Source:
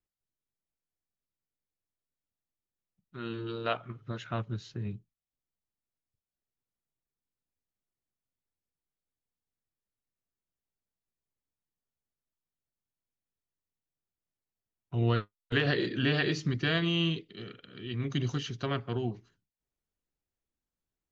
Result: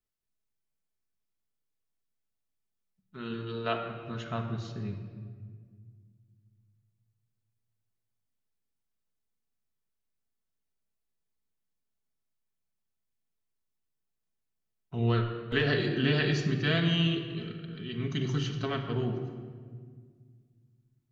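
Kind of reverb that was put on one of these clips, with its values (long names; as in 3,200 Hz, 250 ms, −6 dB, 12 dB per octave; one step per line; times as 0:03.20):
rectangular room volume 2,700 cubic metres, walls mixed, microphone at 1.5 metres
level −1 dB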